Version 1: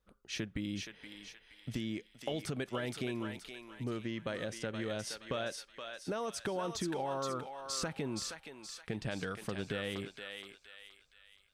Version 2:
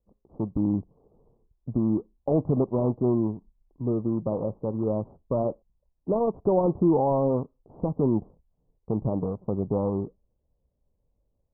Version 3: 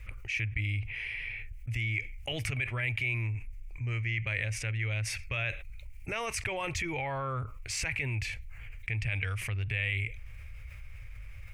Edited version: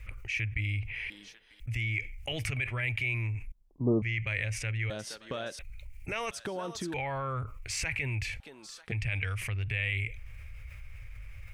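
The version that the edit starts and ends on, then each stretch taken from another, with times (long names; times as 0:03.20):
3
0:01.10–0:01.60: punch in from 1
0:03.52–0:04.02: punch in from 2
0:04.90–0:05.59: punch in from 1
0:06.31–0:06.94: punch in from 1
0:08.40–0:08.92: punch in from 1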